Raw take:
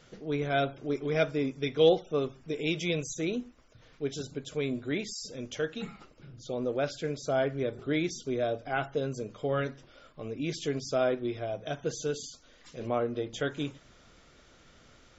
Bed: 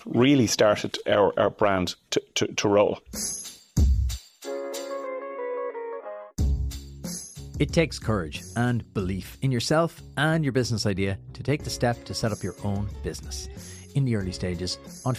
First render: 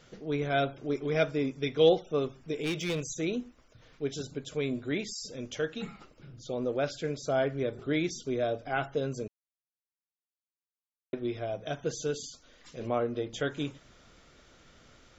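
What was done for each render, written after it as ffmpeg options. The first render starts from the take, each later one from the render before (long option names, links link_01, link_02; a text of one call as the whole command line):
ffmpeg -i in.wav -filter_complex "[0:a]asettb=1/sr,asplit=3[link_01][link_02][link_03];[link_01]atrim=end=2.554[link_04];[link_02]atrim=start=2.55:end=3.17,asetpts=PTS-STARTPTS,afade=type=in:duration=0.004:curve=qsin,afade=type=out:start_time=0.616:duration=0.004:curve=qsin,volume=27dB,asoftclip=hard,volume=-27dB[link_05];[link_03]atrim=start=3.166[link_06];[link_04][link_05]acrossfade=duration=0.004:curve1=hsin:curve2=qsin[link_07];[link_07][link_06]acrossfade=duration=0.004:curve1=qsin:curve2=hsin,asplit=3[link_08][link_09][link_10];[link_08]atrim=end=9.28,asetpts=PTS-STARTPTS,afade=type=out:start_time=9.276:duration=0.004:curve=hsin[link_11];[link_09]atrim=start=9.28:end=11.13,asetpts=PTS-STARTPTS,volume=0[link_12];[link_10]atrim=start=11.13,asetpts=PTS-STARTPTS,afade=type=in:duration=0.004:curve=hsin[link_13];[link_11][link_12][link_13]concat=n=3:v=0:a=1" out.wav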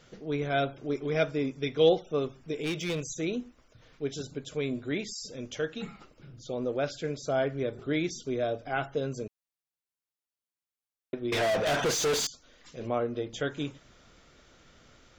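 ffmpeg -i in.wav -filter_complex "[0:a]asettb=1/sr,asplit=3[link_01][link_02][link_03];[link_01]atrim=end=11.324[link_04];[link_02]atrim=start=11.32:end=12.27,asetpts=PTS-STARTPTS,afade=type=in:duration=0.004:curve=qsin,afade=type=out:start_time=0.946:duration=0.004:curve=qsin,asplit=2[link_05][link_06];[link_06]highpass=frequency=720:poles=1,volume=37dB,asoftclip=type=tanh:threshold=-20dB[link_07];[link_05][link_07]amix=inputs=2:normalize=0,lowpass=frequency=4800:poles=1,volume=-6dB[link_08];[link_03]atrim=start=12.266[link_09];[link_04][link_08]acrossfade=duration=0.004:curve1=hsin:curve2=qsin[link_10];[link_10][link_09]acrossfade=duration=0.004:curve1=qsin:curve2=hsin" out.wav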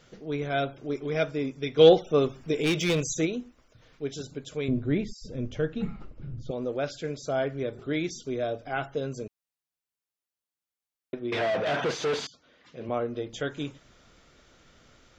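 ffmpeg -i in.wav -filter_complex "[0:a]asplit=3[link_01][link_02][link_03];[link_01]afade=type=out:start_time=1.77:duration=0.02[link_04];[link_02]acontrast=69,afade=type=in:start_time=1.77:duration=0.02,afade=type=out:start_time=3.25:duration=0.02[link_05];[link_03]afade=type=in:start_time=3.25:duration=0.02[link_06];[link_04][link_05][link_06]amix=inputs=3:normalize=0,asettb=1/sr,asplit=3[link_07][link_08][link_09];[link_07]atrim=end=4.684[link_10];[link_08]atrim=start=4.68:end=6.51,asetpts=PTS-STARTPTS,afade=type=in:duration=0.004:curve=qsin,afade=type=out:start_time=1.826:duration=0.004:curve=qsin,aemphasis=mode=reproduction:type=riaa[link_11];[link_09]atrim=start=6.506[link_12];[link_10][link_11]acrossfade=duration=0.004:curve1=hsin:curve2=qsin[link_13];[link_13][link_12]acrossfade=duration=0.004:curve1=qsin:curve2=hsin,asettb=1/sr,asplit=3[link_14][link_15][link_16];[link_14]atrim=end=11.194[link_17];[link_15]atrim=start=11.19:end=12.89,asetpts=PTS-STARTPTS,afade=type=in:duration=0.004:curve=qsin,afade=type=out:start_time=1.696:duration=0.004:curve=qsin,highpass=100,lowpass=3500[link_18];[link_16]atrim=start=12.886[link_19];[link_17][link_18]acrossfade=duration=0.004:curve1=hsin:curve2=qsin[link_20];[link_20][link_19]acrossfade=duration=0.004:curve1=qsin:curve2=hsin" out.wav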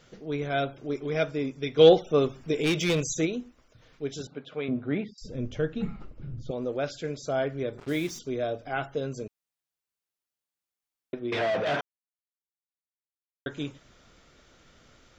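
ffmpeg -i in.wav -filter_complex "[0:a]asettb=1/sr,asplit=3[link_01][link_02][link_03];[link_01]atrim=end=4.274[link_04];[link_02]atrim=start=4.27:end=5.18,asetpts=PTS-STARTPTS,afade=type=in:duration=0.004:curve=qsin,afade=type=out:start_time=0.906:duration=0.004:curve=qsin,highpass=180,equalizer=frequency=350:width_type=q:width=4:gain=-5,equalizer=frequency=780:width_type=q:width=4:gain=5,equalizer=frequency=1300:width_type=q:width=4:gain=6,lowpass=frequency=3500:width=0.5412,lowpass=frequency=3500:width=1.3066[link_05];[link_03]atrim=start=5.176[link_06];[link_04][link_05]acrossfade=duration=0.004:curve1=hsin:curve2=qsin[link_07];[link_07][link_06]acrossfade=duration=0.004:curve1=qsin:curve2=hsin,asettb=1/sr,asplit=3[link_08][link_09][link_10];[link_08]atrim=end=7.784[link_11];[link_09]atrim=start=7.78:end=8.19,asetpts=PTS-STARTPTS,afade=type=in:duration=0.004:curve=qsin,afade=type=out:start_time=0.406:duration=0.004:curve=qsin,acrusher=bits=6:mix=0:aa=0.5[link_12];[link_10]atrim=start=8.186[link_13];[link_11][link_12]acrossfade=duration=0.004:curve1=hsin:curve2=qsin[link_14];[link_14][link_13]acrossfade=duration=0.004:curve1=qsin:curve2=hsin,asplit=3[link_15][link_16][link_17];[link_15]atrim=end=11.81,asetpts=PTS-STARTPTS,afade=type=out:start_time=11.806:duration=0.004:curve=hsin[link_18];[link_16]atrim=start=11.81:end=13.46,asetpts=PTS-STARTPTS,volume=0[link_19];[link_17]atrim=start=13.46,asetpts=PTS-STARTPTS,afade=type=in:duration=0.004:curve=hsin[link_20];[link_18][link_19][link_20]concat=n=3:v=0:a=1" out.wav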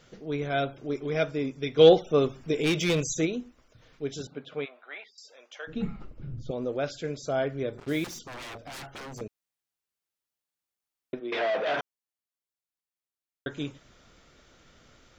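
ffmpeg -i in.wav -filter_complex "[0:a]asplit=3[link_01][link_02][link_03];[link_01]afade=type=out:start_time=4.64:duration=0.02[link_04];[link_02]highpass=frequency=750:width=0.5412,highpass=frequency=750:width=1.3066,afade=type=in:start_time=4.64:duration=0.02,afade=type=out:start_time=5.67:duration=0.02[link_05];[link_03]afade=type=in:start_time=5.67:duration=0.02[link_06];[link_04][link_05][link_06]amix=inputs=3:normalize=0,asettb=1/sr,asplit=3[link_07][link_08][link_09];[link_07]atrim=end=8.044[link_10];[link_08]atrim=start=8.04:end=9.21,asetpts=PTS-STARTPTS,afade=type=in:duration=0.004:curve=qsin,afade=type=out:start_time=1.166:duration=0.004:curve=qsin,aeval=exprs='0.0158*(abs(mod(val(0)/0.0158+3,4)-2)-1)':channel_layout=same[link_11];[link_09]atrim=start=9.206[link_12];[link_10][link_11]acrossfade=duration=0.004:curve1=hsin:curve2=qsin[link_13];[link_13][link_12]acrossfade=duration=0.004:curve1=qsin:curve2=hsin,asplit=3[link_14][link_15][link_16];[link_14]afade=type=out:start_time=11.19:duration=0.02[link_17];[link_15]highpass=340,lowpass=5000,afade=type=in:start_time=11.19:duration=0.02,afade=type=out:start_time=11.76:duration=0.02[link_18];[link_16]afade=type=in:start_time=11.76:duration=0.02[link_19];[link_17][link_18][link_19]amix=inputs=3:normalize=0" out.wav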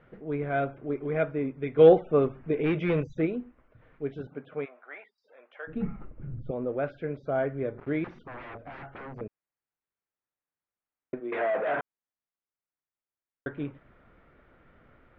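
ffmpeg -i in.wav -af "lowpass=frequency=2100:width=0.5412,lowpass=frequency=2100:width=1.3066" out.wav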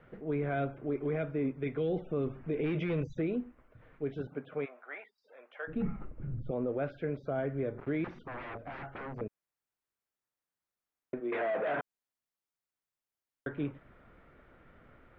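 ffmpeg -i in.wav -filter_complex "[0:a]acrossover=split=340|3000[link_01][link_02][link_03];[link_02]acompressor=threshold=-31dB:ratio=6[link_04];[link_01][link_04][link_03]amix=inputs=3:normalize=0,alimiter=level_in=1dB:limit=-24dB:level=0:latency=1:release=24,volume=-1dB" out.wav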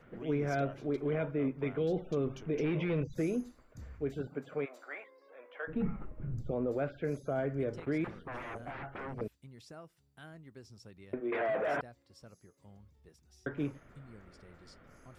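ffmpeg -i in.wav -i bed.wav -filter_complex "[1:a]volume=-28.5dB[link_01];[0:a][link_01]amix=inputs=2:normalize=0" out.wav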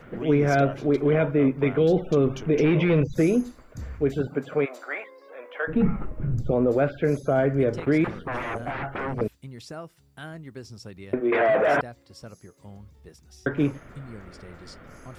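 ffmpeg -i in.wav -af "volume=12dB" out.wav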